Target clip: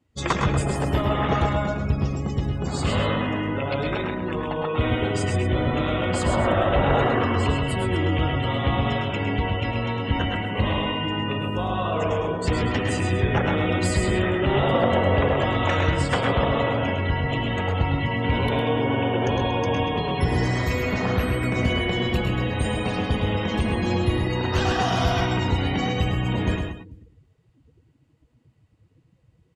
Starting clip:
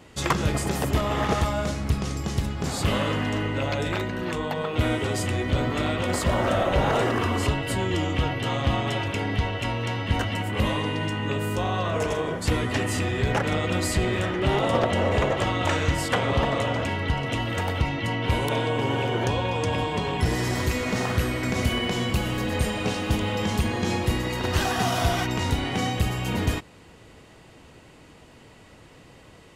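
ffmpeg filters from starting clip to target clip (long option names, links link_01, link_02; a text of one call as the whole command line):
ffmpeg -i in.wav -filter_complex "[0:a]asplit=2[link_01][link_02];[link_02]aecho=0:1:129|440:0.631|0.112[link_03];[link_01][link_03]amix=inputs=2:normalize=0,afftdn=noise_reduction=26:noise_floor=-35,asplit=2[link_04][link_05];[link_05]aecho=0:1:107:0.398[link_06];[link_04][link_06]amix=inputs=2:normalize=0" out.wav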